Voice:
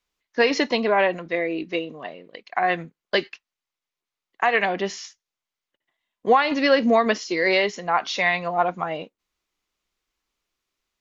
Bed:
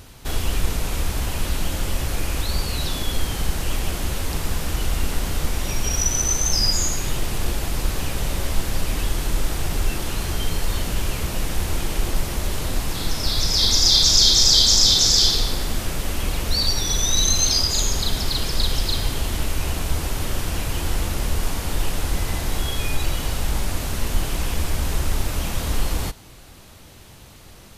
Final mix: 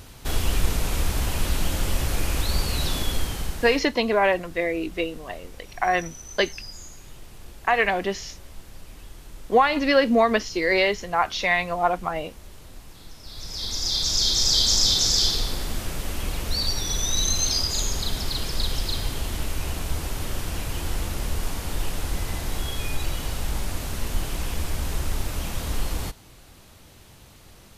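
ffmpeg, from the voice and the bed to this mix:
-filter_complex "[0:a]adelay=3250,volume=0.944[s0];[1:a]volume=5.62,afade=t=out:st=2.98:d=0.9:silence=0.105925,afade=t=in:st=13.24:d=1.46:silence=0.16788[s1];[s0][s1]amix=inputs=2:normalize=0"

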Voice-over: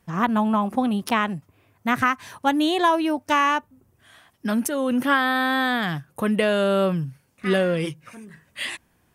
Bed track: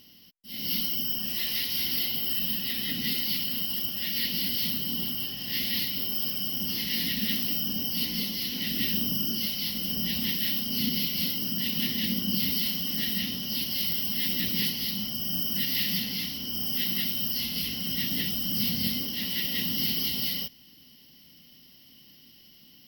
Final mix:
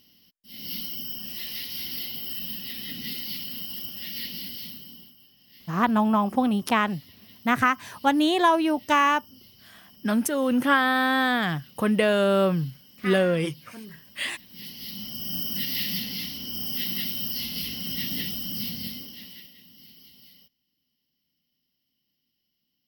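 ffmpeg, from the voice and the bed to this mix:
-filter_complex "[0:a]adelay=5600,volume=0.944[s0];[1:a]volume=7.5,afade=t=out:st=4.19:d=0.95:silence=0.11885,afade=t=in:st=14.48:d=0.87:silence=0.0749894,afade=t=out:st=18.16:d=1.39:silence=0.0749894[s1];[s0][s1]amix=inputs=2:normalize=0"

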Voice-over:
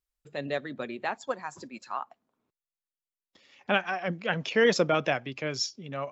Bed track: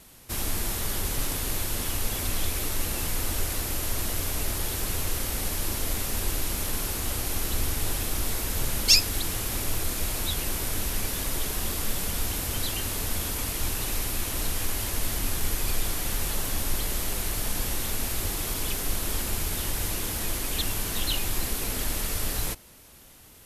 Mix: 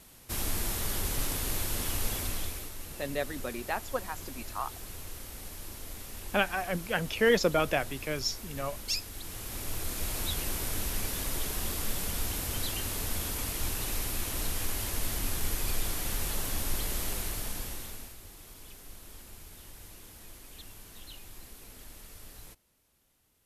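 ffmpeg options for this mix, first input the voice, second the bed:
-filter_complex "[0:a]adelay=2650,volume=0.841[s0];[1:a]volume=2.24,afade=t=out:st=2.09:d=0.63:silence=0.281838,afade=t=in:st=9.15:d=1.06:silence=0.316228,afade=t=out:st=17.09:d=1.08:silence=0.158489[s1];[s0][s1]amix=inputs=2:normalize=0"

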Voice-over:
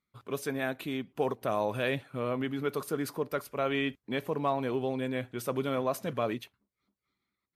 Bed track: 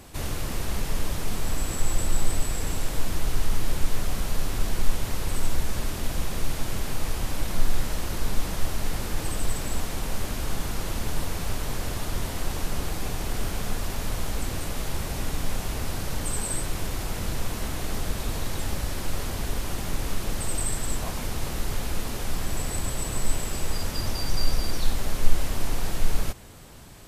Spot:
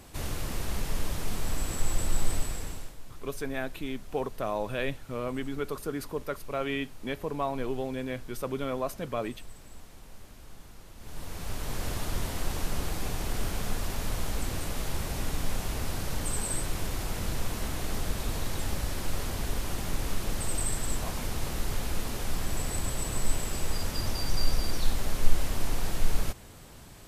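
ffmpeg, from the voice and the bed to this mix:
-filter_complex "[0:a]adelay=2950,volume=0.841[s0];[1:a]volume=5.01,afade=t=out:st=2.34:d=0.62:silence=0.149624,afade=t=in:st=10.97:d=0.91:silence=0.133352[s1];[s0][s1]amix=inputs=2:normalize=0"

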